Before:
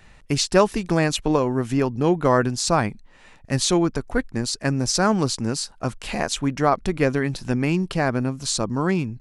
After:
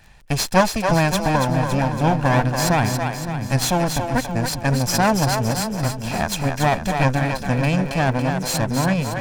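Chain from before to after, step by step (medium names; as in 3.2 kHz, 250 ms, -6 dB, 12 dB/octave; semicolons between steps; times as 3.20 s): comb filter that takes the minimum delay 1.2 ms; crackle 22 per s -36 dBFS; on a send: two-band feedback delay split 330 Hz, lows 583 ms, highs 281 ms, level -5.5 dB; on the sum: trim +1.5 dB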